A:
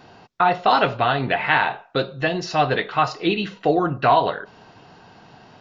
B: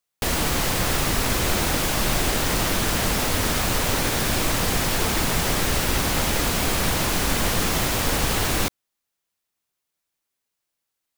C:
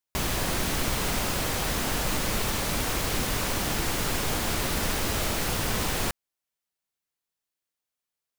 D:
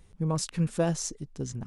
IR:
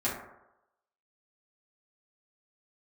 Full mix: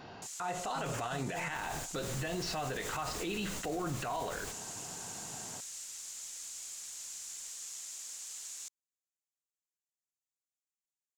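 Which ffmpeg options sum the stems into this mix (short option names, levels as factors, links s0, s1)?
-filter_complex "[0:a]alimiter=limit=0.188:level=0:latency=1:release=202,volume=0.794,asplit=2[s0][s1];[1:a]bandpass=f=7100:t=q:w=4.3:csg=0,volume=0.376[s2];[2:a]adelay=1400,volume=0.188[s3];[3:a]acrusher=samples=18:mix=1:aa=0.000001:lfo=1:lforange=18:lforate=2,asoftclip=type=tanh:threshold=0.0282,adelay=550,volume=0.562[s4];[s1]apad=whole_len=431315[s5];[s3][s5]sidechaingate=range=0.0224:threshold=0.00708:ratio=16:detection=peak[s6];[s0][s2][s6][s4]amix=inputs=4:normalize=0,alimiter=level_in=1.58:limit=0.0631:level=0:latency=1:release=57,volume=0.631"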